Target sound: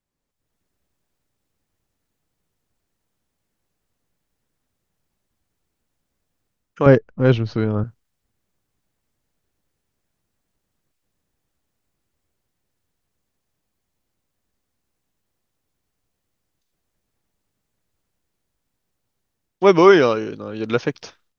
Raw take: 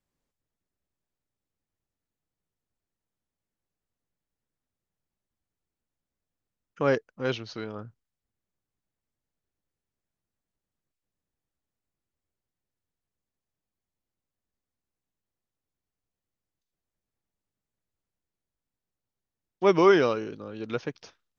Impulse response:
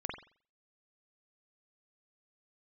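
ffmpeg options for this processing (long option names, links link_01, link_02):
-filter_complex "[0:a]asettb=1/sr,asplit=3[link_01][link_02][link_03];[link_01]atrim=end=6.864[link_04];[link_02]atrim=start=6.86:end=7.84,asetpts=PTS-STARTPTS,afade=type=in:duration=0.004:curve=qsin,afade=type=out:start_time=0.976:duration=0.004:curve=qsin,aemphasis=mode=reproduction:type=riaa[link_05];[link_03]atrim=start=7.836[link_06];[link_04][link_05]acrossfade=duration=0.004:curve1=hsin:curve2=qsin[link_07];[link_07][link_06]acrossfade=duration=0.004:curve1=qsin:curve2=hsin,dynaudnorm=framelen=280:gausssize=3:maxgain=12.5dB"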